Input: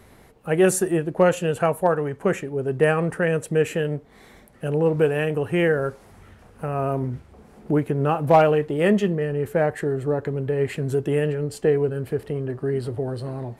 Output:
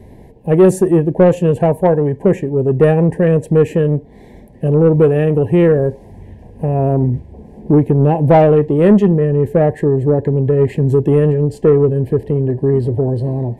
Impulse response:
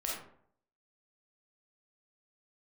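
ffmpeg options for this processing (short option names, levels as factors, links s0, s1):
-af "asuperstop=centerf=1300:order=12:qfactor=2.3,tiltshelf=f=970:g=9,acontrast=42,volume=0.891"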